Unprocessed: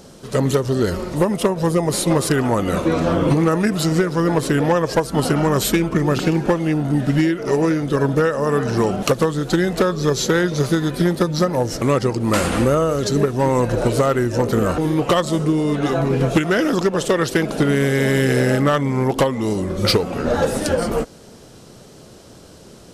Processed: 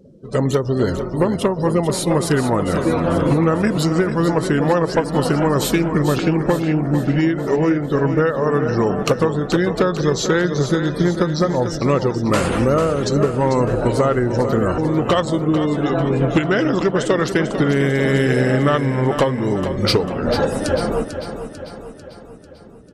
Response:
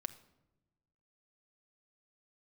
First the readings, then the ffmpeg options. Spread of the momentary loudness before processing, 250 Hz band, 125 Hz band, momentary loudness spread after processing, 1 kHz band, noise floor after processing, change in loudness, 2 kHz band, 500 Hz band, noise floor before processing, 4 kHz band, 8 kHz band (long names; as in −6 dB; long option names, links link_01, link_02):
3 LU, +0.5 dB, +0.5 dB, 3 LU, +0.5 dB, −38 dBFS, +0.5 dB, 0.0 dB, +0.5 dB, −43 dBFS, −1.0 dB, −3.0 dB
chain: -filter_complex "[0:a]afftdn=noise_reduction=27:noise_floor=-36,highshelf=frequency=9600:gain=-6,asplit=2[link_01][link_02];[link_02]aecho=0:1:445|890|1335|1780|2225|2670:0.335|0.178|0.0941|0.0499|0.0264|0.014[link_03];[link_01][link_03]amix=inputs=2:normalize=0"